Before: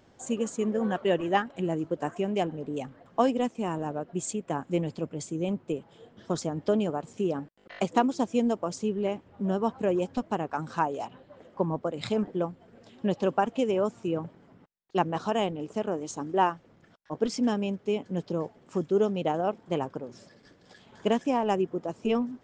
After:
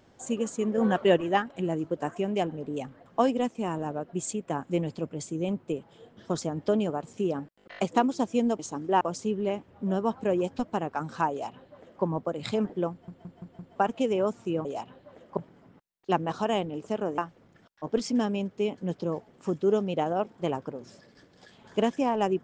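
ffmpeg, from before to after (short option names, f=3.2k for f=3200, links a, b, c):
-filter_complex "[0:a]asplit=13[a][b][c][d][e][f][g][h][i][j][k][l][m];[a]atrim=end=0.782[n];[b]atrim=start=0.778:end=1.172,asetpts=PTS-STARTPTS,volume=4dB[o];[c]atrim=start=1.168:end=8.592[p];[d]atrim=start=16.038:end=16.462[q];[e]atrim=start=8.588:end=12.662[r];[f]atrim=start=12.488:end=12.662[s];[g]atrim=start=12.488:end=12.662[t];[h]atrim=start=12.488:end=12.662[u];[i]atrim=start=12.488:end=12.662[v];[j]atrim=start=13.338:end=14.232[w];[k]atrim=start=10.888:end=11.612[x];[l]atrim=start=14.228:end=16.042[y];[m]atrim=start=16.458[z];[n][o]acrossfade=d=0.004:c1=hsin:c2=hsin[aa];[aa][p]acrossfade=d=0.004:c1=hsin:c2=hsin[ab];[ab][q]acrossfade=d=0.004:c1=hsin:c2=hsin[ac];[ac][r]acrossfade=d=0.004:c1=hsin:c2=hsin[ad];[ad][s]acrossfade=d=0.004:c1=hsin:c2=hsin[ae];[ae][t]acrossfade=d=0.004:c1=hsin:c2=hsin[af];[af][u]acrossfade=d=0.004:c1=hsin:c2=hsin[ag];[ag][v]acrossfade=d=0.004:c1=hsin:c2=hsin[ah];[ah][w]acrossfade=d=0.004:c1=hsin:c2=hsin[ai];[ai][x]acrossfade=d=0.004:c1=hsin:c2=hsin[aj];[aj][y]acrossfade=d=0.004:c1=hsin:c2=hsin[ak];[ak][z]acrossfade=d=0.004:c1=hsin:c2=hsin"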